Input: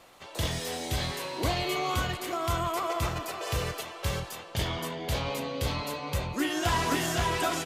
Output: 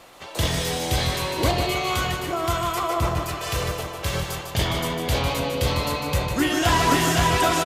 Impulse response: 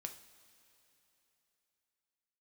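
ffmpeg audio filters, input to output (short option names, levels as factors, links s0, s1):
-filter_complex "[0:a]asettb=1/sr,asplit=3[s0][s1][s2];[s0]atrim=end=1.514[s3];[s1]atrim=start=1.51:end=4.14,asetpts=PTS-STARTPTS,afade=t=in:d=0.004:c=qsin,afade=t=out:st=2.626:d=0.004:c=qsin,acrossover=split=1200[s4][s5];[s4]aeval=exprs='val(0)*(1-0.5/2+0.5/2*cos(2*PI*1.3*n/s))':c=same[s6];[s5]aeval=exprs='val(0)*(1-0.5/2-0.5/2*cos(2*PI*1.3*n/s))':c=same[s7];[s6][s7]amix=inputs=2:normalize=0[s8];[s2]atrim=start=4.136[s9];[s3][s8]acrossfade=d=0.004:c1=hsin:c2=qsin[s10];[s10][s9]acrossfade=d=0.004:c1=qsin:c2=hsin,aecho=1:1:151|302|453|604|755:0.473|0.185|0.072|0.0281|0.0109,volume=2.24"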